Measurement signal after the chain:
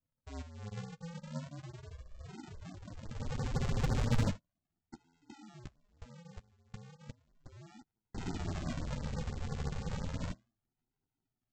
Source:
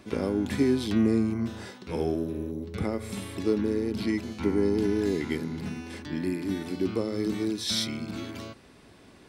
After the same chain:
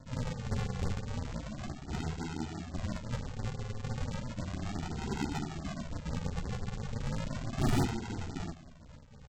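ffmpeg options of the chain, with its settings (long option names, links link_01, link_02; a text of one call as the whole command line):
ffmpeg -i in.wav -af "highpass=80,bandreject=frequency=60:width_type=h:width=6,bandreject=frequency=120:width_type=h:width=6,bandreject=frequency=180:width_type=h:width=6,bandreject=frequency=240:width_type=h:width=6,afftfilt=real='re*lt(hypot(re,im),0.282)':imag='im*lt(hypot(re,im),0.282)':win_size=1024:overlap=0.75,aexciter=amount=7.2:drive=1.2:freq=2200,aresample=16000,acrusher=samples=39:mix=1:aa=0.000001:lfo=1:lforange=23.4:lforate=0.34,aresample=44100,asoftclip=type=tanh:threshold=-21dB,flanger=delay=7.6:depth=6.4:regen=-23:speed=0.27:shape=sinusoidal,afftfilt=real='re*(1-between(b*sr/1024,240*pow(3000/240,0.5+0.5*sin(2*PI*5.9*pts/sr))/1.41,240*pow(3000/240,0.5+0.5*sin(2*PI*5.9*pts/sr))*1.41))':imag='im*(1-between(b*sr/1024,240*pow(3000/240,0.5+0.5*sin(2*PI*5.9*pts/sr))/1.41,240*pow(3000/240,0.5+0.5*sin(2*PI*5.9*pts/sr))*1.41))':win_size=1024:overlap=0.75" out.wav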